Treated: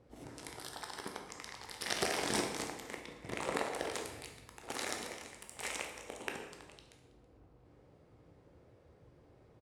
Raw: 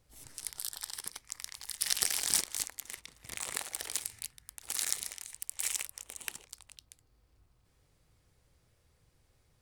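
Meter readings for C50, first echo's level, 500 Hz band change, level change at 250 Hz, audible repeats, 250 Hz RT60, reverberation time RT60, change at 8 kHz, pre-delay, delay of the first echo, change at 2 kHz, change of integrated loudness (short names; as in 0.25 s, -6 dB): 6.0 dB, -22.5 dB, +14.5 dB, +14.5 dB, 1, 1.2 s, 1.1 s, -10.5 dB, 12 ms, 0.325 s, +2.5 dB, -5.0 dB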